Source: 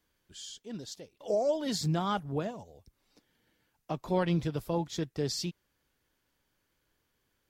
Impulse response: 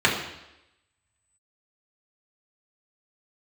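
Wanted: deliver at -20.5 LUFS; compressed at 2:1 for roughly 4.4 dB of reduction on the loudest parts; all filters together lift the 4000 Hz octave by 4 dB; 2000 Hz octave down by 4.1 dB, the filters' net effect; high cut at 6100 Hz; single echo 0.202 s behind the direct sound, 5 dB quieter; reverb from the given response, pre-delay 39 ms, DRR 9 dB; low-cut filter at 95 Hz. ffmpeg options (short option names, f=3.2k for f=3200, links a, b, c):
-filter_complex "[0:a]highpass=95,lowpass=6.1k,equalizer=f=2k:t=o:g=-8,equalizer=f=4k:t=o:g=8,acompressor=threshold=-32dB:ratio=2,aecho=1:1:202:0.562,asplit=2[a][b];[1:a]atrim=start_sample=2205,adelay=39[c];[b][c]afir=irnorm=-1:irlink=0,volume=-28dB[d];[a][d]amix=inputs=2:normalize=0,volume=14.5dB"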